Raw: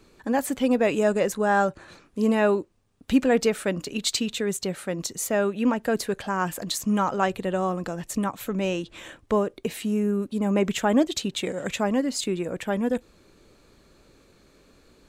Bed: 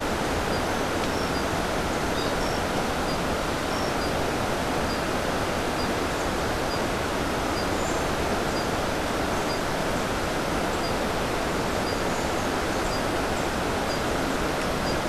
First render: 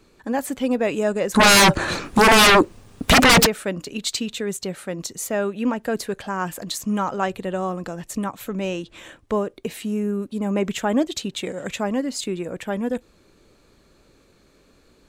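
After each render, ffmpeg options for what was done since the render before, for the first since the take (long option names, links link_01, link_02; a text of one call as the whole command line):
ffmpeg -i in.wav -filter_complex "[0:a]asplit=3[link_01][link_02][link_03];[link_01]afade=type=out:start_time=1.34:duration=0.02[link_04];[link_02]aeval=exprs='0.355*sin(PI/2*8.91*val(0)/0.355)':channel_layout=same,afade=type=in:start_time=1.34:duration=0.02,afade=type=out:start_time=3.45:duration=0.02[link_05];[link_03]afade=type=in:start_time=3.45:duration=0.02[link_06];[link_04][link_05][link_06]amix=inputs=3:normalize=0" out.wav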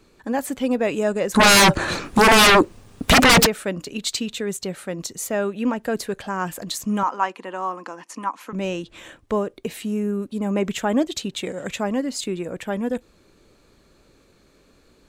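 ffmpeg -i in.wav -filter_complex "[0:a]asettb=1/sr,asplit=3[link_01][link_02][link_03];[link_01]atrim=end=7.034[link_04];[link_02]atrim=start=7.03:end=8.53,asetpts=PTS-STARTPTS,afade=type=in:duration=0.004:curve=qsin,afade=type=out:start_time=1.496:duration=0.004:curve=qsin,highpass=frequency=280:width=0.5412,highpass=frequency=280:width=1.3066,equalizer=frequency=410:width_type=q:width=4:gain=-9,equalizer=frequency=620:width_type=q:width=4:gain=-9,equalizer=frequency=1000:width_type=q:width=4:gain=10,equalizer=frequency=3700:width_type=q:width=4:gain=-9,equalizer=frequency=7900:width_type=q:width=4:gain=-10,lowpass=frequency=9400:width=0.5412,lowpass=frequency=9400:width=1.3066[link_05];[link_03]atrim=start=8.526[link_06];[link_04][link_05]acrossfade=duration=0.004:curve1=hsin:curve2=qsin[link_07];[link_07][link_06]acrossfade=duration=0.004:curve1=qsin:curve2=hsin" out.wav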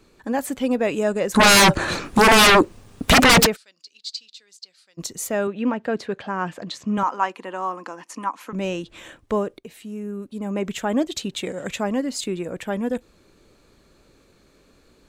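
ffmpeg -i in.wav -filter_complex "[0:a]asplit=3[link_01][link_02][link_03];[link_01]afade=type=out:start_time=3.55:duration=0.02[link_04];[link_02]bandpass=frequency=4700:width_type=q:width=6.2,afade=type=in:start_time=3.55:duration=0.02,afade=type=out:start_time=4.97:duration=0.02[link_05];[link_03]afade=type=in:start_time=4.97:duration=0.02[link_06];[link_04][link_05][link_06]amix=inputs=3:normalize=0,asettb=1/sr,asplit=3[link_07][link_08][link_09];[link_07]atrim=end=5.474[link_10];[link_08]atrim=start=5.47:end=6.98,asetpts=PTS-STARTPTS,afade=type=in:duration=0.004:curve=qsin,afade=type=out:start_time=1.506:duration=0.004:curve=qsin,highpass=110,lowpass=3800[link_11];[link_09]atrim=start=6.976[link_12];[link_10][link_11]acrossfade=duration=0.004:curve1=hsin:curve2=qsin[link_13];[link_13][link_12]acrossfade=duration=0.004:curve1=qsin:curve2=hsin,asplit=2[link_14][link_15];[link_14]atrim=end=9.59,asetpts=PTS-STARTPTS,afade=type=out:start_time=9.586:duration=0.004:curve=hsin:silence=0.237137[link_16];[link_15]atrim=start=9.59,asetpts=PTS-STARTPTS,afade=type=in:duration=1.72:silence=0.237137[link_17];[link_16][link_17]concat=n=2:v=0:a=1" out.wav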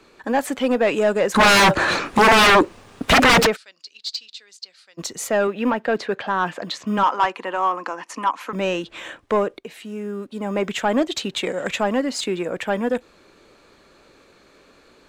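ffmpeg -i in.wav -filter_complex "[0:a]asplit=2[link_01][link_02];[link_02]highpass=frequency=720:poles=1,volume=15dB,asoftclip=type=tanh:threshold=-7.5dB[link_03];[link_01][link_03]amix=inputs=2:normalize=0,lowpass=frequency=2700:poles=1,volume=-6dB,acrossover=split=130[link_04][link_05];[link_04]acrusher=samples=26:mix=1:aa=0.000001[link_06];[link_06][link_05]amix=inputs=2:normalize=0" out.wav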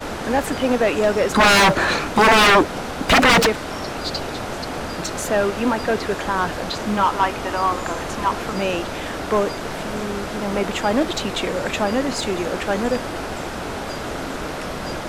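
ffmpeg -i in.wav -i bed.wav -filter_complex "[1:a]volume=-2dB[link_01];[0:a][link_01]amix=inputs=2:normalize=0" out.wav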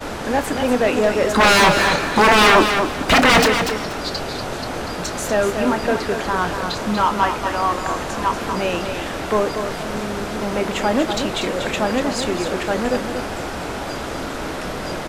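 ffmpeg -i in.wav -filter_complex "[0:a]asplit=2[link_01][link_02];[link_02]adelay=28,volume=-12.5dB[link_03];[link_01][link_03]amix=inputs=2:normalize=0,asplit=2[link_04][link_05];[link_05]aecho=0:1:240|480|720:0.447|0.107|0.0257[link_06];[link_04][link_06]amix=inputs=2:normalize=0" out.wav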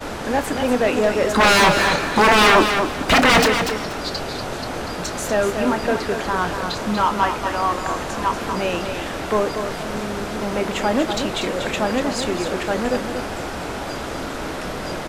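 ffmpeg -i in.wav -af "volume=-1dB" out.wav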